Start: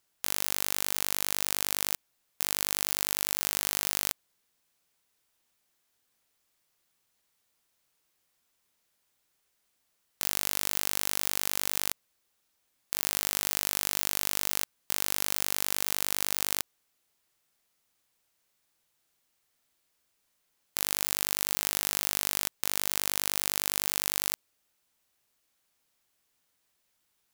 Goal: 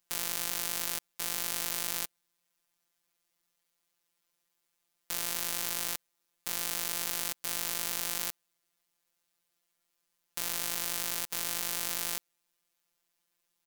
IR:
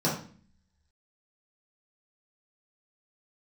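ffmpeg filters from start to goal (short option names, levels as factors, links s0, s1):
-af "atempo=2,afftfilt=real='hypot(re,im)*cos(PI*b)':imag='0':win_size=1024:overlap=0.75"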